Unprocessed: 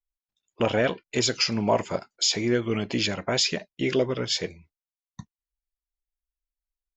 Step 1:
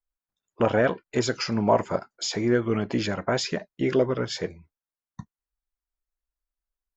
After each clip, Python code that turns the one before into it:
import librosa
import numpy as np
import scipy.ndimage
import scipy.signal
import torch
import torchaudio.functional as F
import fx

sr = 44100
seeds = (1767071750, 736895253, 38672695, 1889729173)

y = fx.high_shelf_res(x, sr, hz=2000.0, db=-7.5, q=1.5)
y = y * librosa.db_to_amplitude(1.5)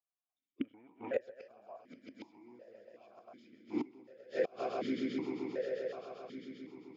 y = fx.echo_swell(x, sr, ms=132, loudest=5, wet_db=-10.0)
y = fx.gate_flip(y, sr, shuts_db=-15.0, range_db=-27)
y = fx.vowel_held(y, sr, hz=2.7)
y = y * librosa.db_to_amplitude(3.5)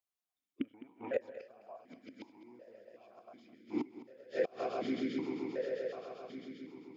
y = x + 10.0 ** (-15.5 / 20.0) * np.pad(x, (int(209 * sr / 1000.0), 0))[:len(x)]